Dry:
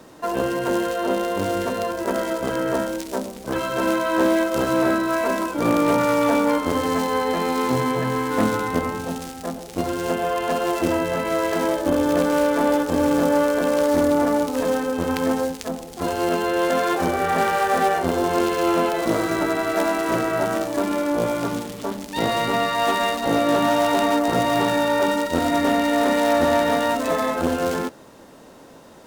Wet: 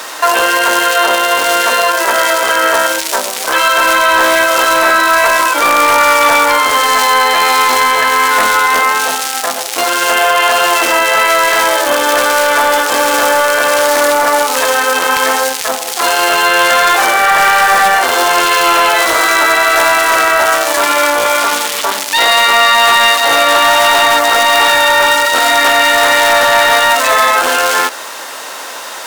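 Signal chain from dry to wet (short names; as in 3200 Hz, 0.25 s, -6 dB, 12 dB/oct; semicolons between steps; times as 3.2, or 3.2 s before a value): HPF 1200 Hz 12 dB/oct; soft clip -21 dBFS, distortion -17 dB; maximiser +29.5 dB; gain -1 dB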